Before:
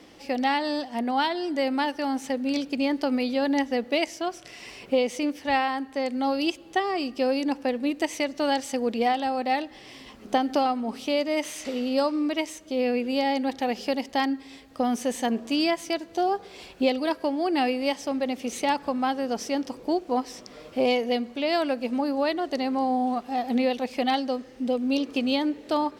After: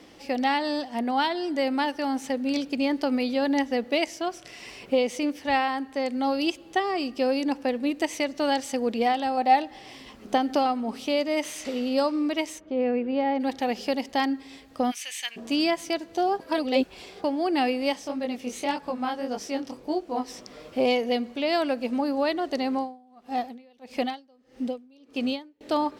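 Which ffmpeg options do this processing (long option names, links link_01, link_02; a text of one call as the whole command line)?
ffmpeg -i in.wav -filter_complex "[0:a]asettb=1/sr,asplit=3[link_01][link_02][link_03];[link_01]atrim=end=9.374[link_04];[link_02]atrim=start=9.37:end=9.96,asetpts=PTS-STARTPTS,afade=type=in:duration=0.004:curve=qsin,afade=type=out:start_time=0.586:duration=0.004:curve=qsin,equalizer=frequency=780:width=4.1:gain=7.5[link_05];[link_03]atrim=start=9.956[link_06];[link_04][link_05]acrossfade=duration=0.004:curve1=hsin:curve2=qsin[link_07];[link_07][link_06]acrossfade=duration=0.004:curve1=qsin:curve2=hsin,asplit=3[link_08][link_09][link_10];[link_08]afade=type=out:start_time=12.59:duration=0.02[link_11];[link_09]lowpass=1800,afade=type=in:start_time=12.59:duration=0.02,afade=type=out:start_time=13.39:duration=0.02[link_12];[link_10]afade=type=in:start_time=13.39:duration=0.02[link_13];[link_11][link_12][link_13]amix=inputs=3:normalize=0,asplit=3[link_14][link_15][link_16];[link_14]afade=type=out:start_time=14.9:duration=0.02[link_17];[link_15]highpass=frequency=2400:width_type=q:width=2.7,afade=type=in:start_time=14.9:duration=0.02,afade=type=out:start_time=15.36:duration=0.02[link_18];[link_16]afade=type=in:start_time=15.36:duration=0.02[link_19];[link_17][link_18][link_19]amix=inputs=3:normalize=0,asplit=3[link_20][link_21][link_22];[link_20]afade=type=out:start_time=17.98:duration=0.02[link_23];[link_21]flanger=delay=19:depth=5.6:speed=1.7,afade=type=in:start_time=17.98:duration=0.02,afade=type=out:start_time=20.27:duration=0.02[link_24];[link_22]afade=type=in:start_time=20.27:duration=0.02[link_25];[link_23][link_24][link_25]amix=inputs=3:normalize=0,asettb=1/sr,asplit=3[link_26][link_27][link_28];[link_26]atrim=end=22.754[link_29];[link_27]atrim=start=22.75:end=25.61,asetpts=PTS-STARTPTS,afade=type=in:duration=0.004:curve=qsin,afade=type=out:start_time=2.856:duration=0.004:curve=qsin,aeval=exprs='val(0)*pow(10,-32*(0.5-0.5*cos(2*PI*1.6*n/s))/20)':channel_layout=same[link_30];[link_28]atrim=start=25.606[link_31];[link_29][link_30]acrossfade=duration=0.004:curve1=hsin:curve2=qsin[link_32];[link_32][link_31]acrossfade=duration=0.004:curve1=qsin:curve2=hsin,asplit=3[link_33][link_34][link_35];[link_33]atrim=end=16.402[link_36];[link_34]atrim=start=16.398:end=17.242,asetpts=PTS-STARTPTS,areverse[link_37];[link_35]atrim=start=17.238[link_38];[link_36][link_37]acrossfade=duration=0.004:curve1=hsin:curve2=hsin[link_39];[link_39][link_38]acrossfade=duration=0.004:curve1=hsin:curve2=hsin" out.wav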